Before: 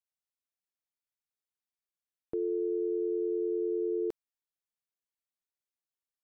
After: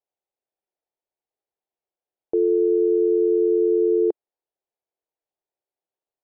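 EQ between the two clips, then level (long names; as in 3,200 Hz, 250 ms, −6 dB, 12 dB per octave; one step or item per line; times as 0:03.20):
high-frequency loss of the air 240 metres
flat-topped bell 540 Hz +13.5 dB
0.0 dB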